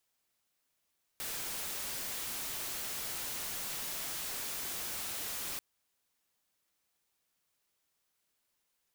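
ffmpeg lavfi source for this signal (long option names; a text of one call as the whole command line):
ffmpeg -f lavfi -i "anoisesrc=color=white:amplitude=0.0194:duration=4.39:sample_rate=44100:seed=1" out.wav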